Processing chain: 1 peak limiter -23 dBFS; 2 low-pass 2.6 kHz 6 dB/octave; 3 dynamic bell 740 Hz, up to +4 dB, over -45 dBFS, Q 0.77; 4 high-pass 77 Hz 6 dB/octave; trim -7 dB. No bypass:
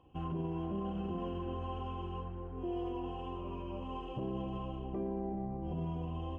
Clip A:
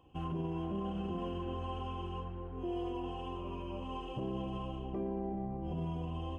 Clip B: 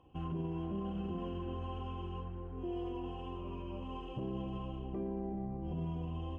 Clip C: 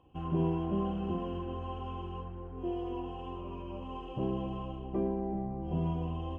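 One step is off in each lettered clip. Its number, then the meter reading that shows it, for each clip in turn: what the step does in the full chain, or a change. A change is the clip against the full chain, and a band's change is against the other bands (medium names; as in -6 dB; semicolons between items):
2, 2 kHz band +2.5 dB; 3, 1 kHz band -2.5 dB; 1, mean gain reduction 2.0 dB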